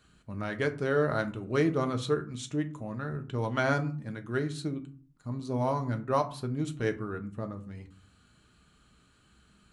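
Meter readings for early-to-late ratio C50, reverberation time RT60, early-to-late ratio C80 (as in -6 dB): 15.5 dB, 0.45 s, 20.5 dB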